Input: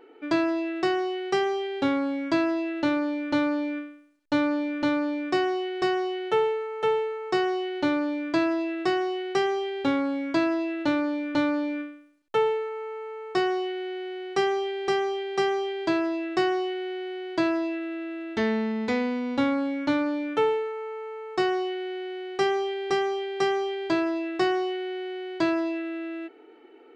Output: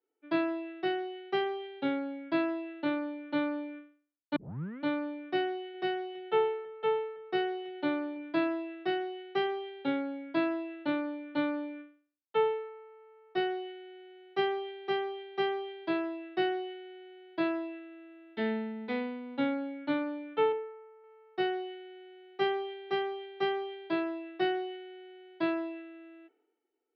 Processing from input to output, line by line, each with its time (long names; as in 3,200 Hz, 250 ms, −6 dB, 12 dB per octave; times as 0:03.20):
0:04.36: tape start 0.46 s
0:05.41–0:08.49: single-tap delay 330 ms −19 dB
0:20.52–0:21.04: high-frequency loss of the air 430 metres
whole clip: elliptic band-pass filter 150–3,600 Hz, stop band 40 dB; notch filter 1,100 Hz, Q 12; multiband upward and downward expander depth 100%; level −6.5 dB